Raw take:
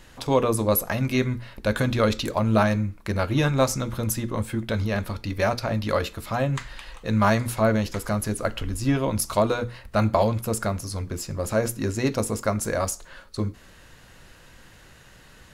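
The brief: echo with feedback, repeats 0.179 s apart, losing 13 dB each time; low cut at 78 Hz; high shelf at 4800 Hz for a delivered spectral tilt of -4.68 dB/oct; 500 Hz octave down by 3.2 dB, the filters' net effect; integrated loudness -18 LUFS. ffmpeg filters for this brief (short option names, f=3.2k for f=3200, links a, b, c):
-af "highpass=78,equalizer=f=500:t=o:g=-4,highshelf=f=4.8k:g=4,aecho=1:1:179|358|537:0.224|0.0493|0.0108,volume=7.5dB"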